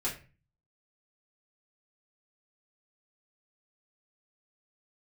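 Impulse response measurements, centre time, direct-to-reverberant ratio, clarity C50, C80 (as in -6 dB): 23 ms, -7.5 dB, 9.0 dB, 14.5 dB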